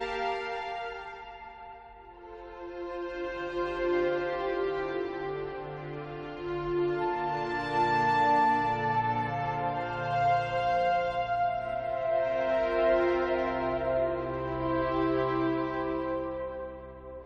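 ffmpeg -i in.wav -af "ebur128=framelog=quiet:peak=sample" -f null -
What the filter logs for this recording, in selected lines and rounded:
Integrated loudness:
  I:         -29.8 LUFS
  Threshold: -40.3 LUFS
Loudness range:
  LRA:         6.8 LU
  Threshold: -49.9 LUFS
  LRA low:   -34.4 LUFS
  LRA high:  -27.6 LUFS
Sample peak:
  Peak:      -15.1 dBFS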